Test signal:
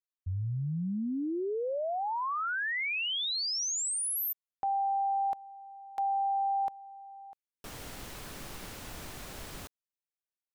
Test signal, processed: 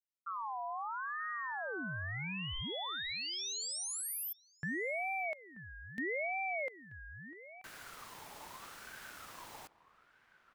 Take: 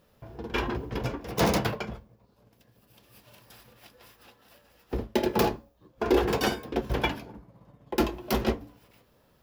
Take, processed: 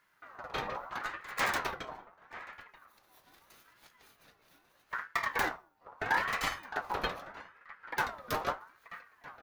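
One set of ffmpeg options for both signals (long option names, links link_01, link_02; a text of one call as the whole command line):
ffmpeg -i in.wav -filter_complex "[0:a]asplit=2[link_01][link_02];[link_02]adelay=932.9,volume=-15dB,highshelf=frequency=4000:gain=-21[link_03];[link_01][link_03]amix=inputs=2:normalize=0,aeval=exprs='val(0)*sin(2*PI*1200*n/s+1200*0.3/0.78*sin(2*PI*0.78*n/s))':channel_layout=same,volume=-4.5dB" out.wav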